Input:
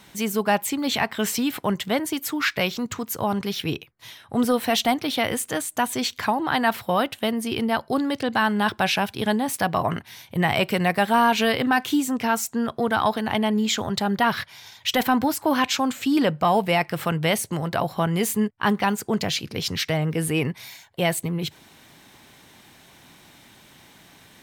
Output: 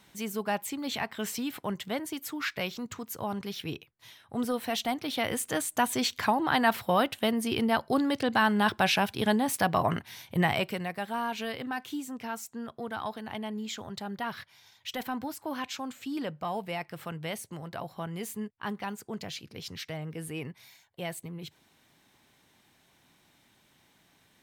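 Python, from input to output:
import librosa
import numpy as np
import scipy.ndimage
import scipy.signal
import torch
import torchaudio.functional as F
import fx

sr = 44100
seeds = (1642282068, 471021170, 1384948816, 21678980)

y = fx.gain(x, sr, db=fx.line((4.88, -9.5), (5.63, -3.0), (10.4, -3.0), (10.89, -14.0)))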